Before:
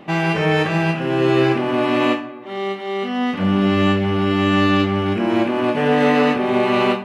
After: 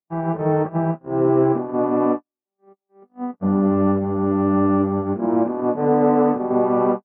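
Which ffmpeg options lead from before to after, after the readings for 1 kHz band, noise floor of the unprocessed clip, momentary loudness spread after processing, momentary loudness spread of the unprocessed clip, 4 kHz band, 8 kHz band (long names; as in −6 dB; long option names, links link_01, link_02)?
−2.5 dB, −32 dBFS, 6 LU, 8 LU, below −35 dB, can't be measured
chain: -af "lowpass=frequency=1100:width=0.5412,lowpass=frequency=1100:width=1.3066,agate=range=-60dB:threshold=-19dB:ratio=16:detection=peak,equalizer=frequency=76:width=0.93:gain=-6"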